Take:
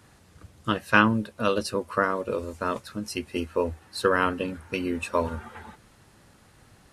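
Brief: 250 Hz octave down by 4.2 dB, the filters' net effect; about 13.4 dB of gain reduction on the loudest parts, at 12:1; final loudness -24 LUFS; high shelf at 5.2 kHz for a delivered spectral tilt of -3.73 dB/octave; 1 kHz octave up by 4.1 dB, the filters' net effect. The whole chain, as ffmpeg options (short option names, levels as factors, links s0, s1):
-af "equalizer=f=250:t=o:g=-5.5,equalizer=f=1000:t=o:g=5,highshelf=f=5200:g=6,acompressor=threshold=0.0708:ratio=12,volume=2.37"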